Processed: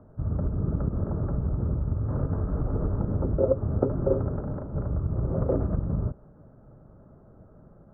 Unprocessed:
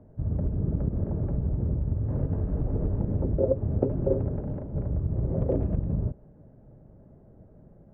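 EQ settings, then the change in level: resonant low-pass 1.3 kHz, resonance Q 5.6; 0.0 dB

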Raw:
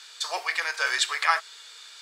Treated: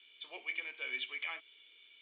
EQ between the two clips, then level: cascade formant filter i; +5.5 dB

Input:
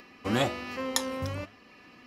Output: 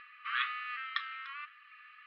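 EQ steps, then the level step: brick-wall FIR high-pass 1.1 kHz; inverse Chebyshev low-pass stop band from 7.6 kHz, stop band 40 dB; distance through air 430 m; +5.5 dB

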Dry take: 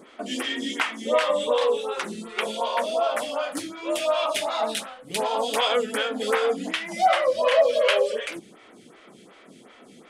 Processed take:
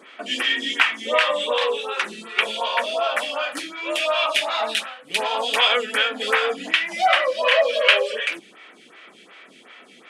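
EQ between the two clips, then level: high-pass 220 Hz 12 dB/octave; peaking EQ 2.3 kHz +14.5 dB 1.8 oct; band-stop 2.1 kHz, Q 14; -3.0 dB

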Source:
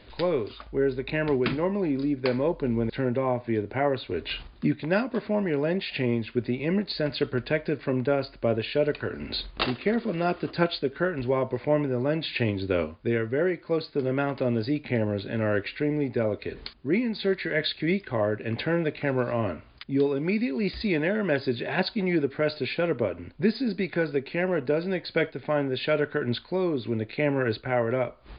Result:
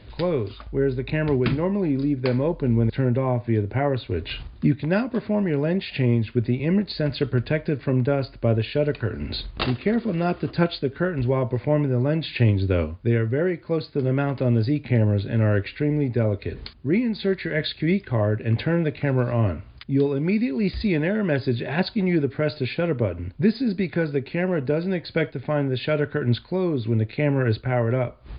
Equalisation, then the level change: peaking EQ 89 Hz +13 dB 2 oct; 0.0 dB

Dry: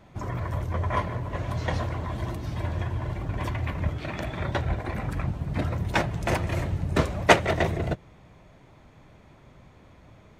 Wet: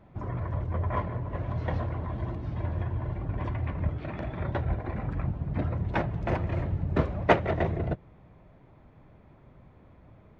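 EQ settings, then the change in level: tape spacing loss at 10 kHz 34 dB; -1.0 dB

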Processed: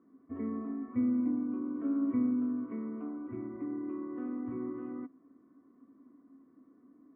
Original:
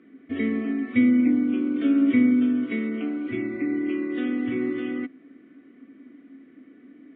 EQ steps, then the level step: four-pole ladder low-pass 1.1 kHz, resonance 80%; bass shelf 160 Hz +10.5 dB; -2.0 dB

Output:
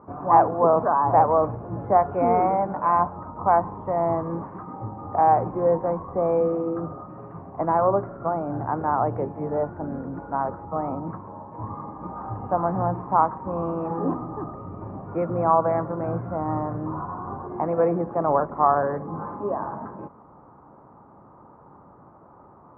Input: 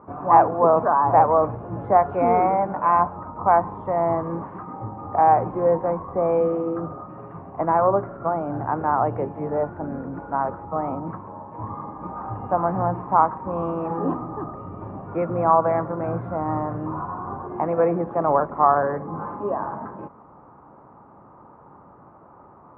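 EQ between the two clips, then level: distance through air 480 m; 0.0 dB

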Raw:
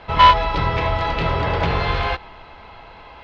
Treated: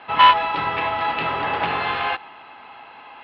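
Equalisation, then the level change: cabinet simulation 160–3800 Hz, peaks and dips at 260 Hz +8 dB, 370 Hz +3 dB, 810 Hz +10 dB, 1.2 kHz +8 dB, 1.7 kHz +7 dB, 2.7 kHz +7 dB; treble shelf 2.9 kHz +10 dB; -8.5 dB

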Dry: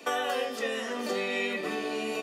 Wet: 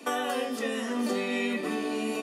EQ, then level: fifteen-band graphic EQ 250 Hz +11 dB, 1 kHz +3 dB, 10 kHz +8 dB; -2.0 dB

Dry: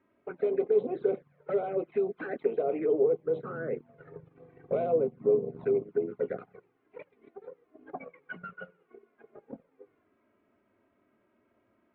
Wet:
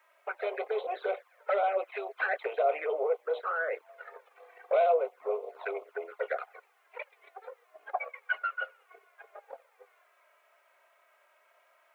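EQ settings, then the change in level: steep high-pass 590 Hz 36 dB/octave; treble shelf 2 kHz +8.5 dB; +8.0 dB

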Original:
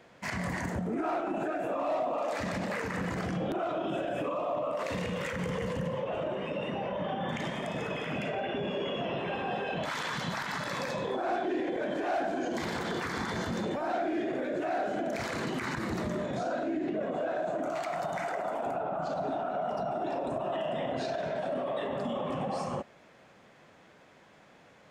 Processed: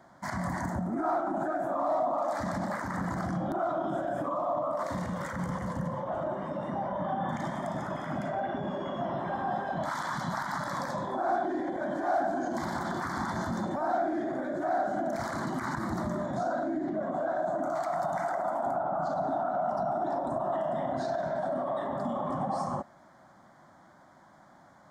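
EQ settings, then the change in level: peaking EQ 470 Hz +9.5 dB 2.1 oct; static phaser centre 1.1 kHz, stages 4; 0.0 dB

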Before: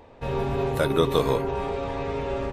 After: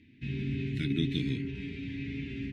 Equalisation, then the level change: band-pass 110–3000 Hz; elliptic band-stop 290–2100 Hz, stop band 40 dB; 0.0 dB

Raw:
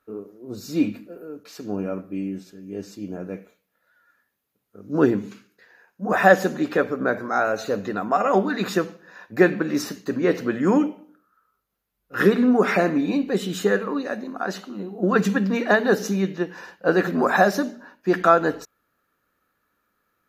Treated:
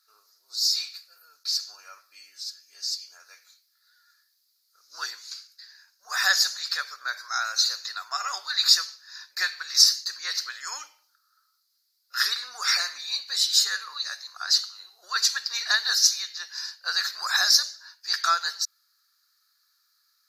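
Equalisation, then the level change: high-pass 1.3 kHz 24 dB/octave; resonant high shelf 3.6 kHz +7.5 dB, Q 3; peaking EQ 4.7 kHz +11 dB 0.75 oct; -1.0 dB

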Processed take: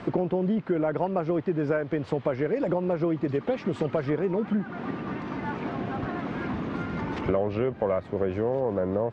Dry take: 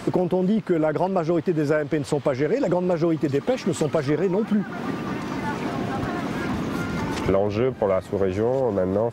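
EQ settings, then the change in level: low-pass 2.9 kHz 12 dB/octave; -4.5 dB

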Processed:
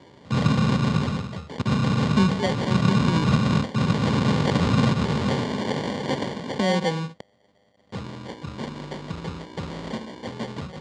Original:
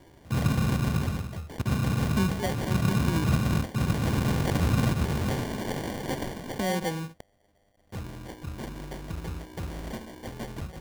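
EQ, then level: cabinet simulation 160–6200 Hz, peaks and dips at 330 Hz -8 dB, 700 Hz -7 dB, 1.6 kHz -6 dB, 2.5 kHz -5 dB, 5.8 kHz -7 dB; +9.0 dB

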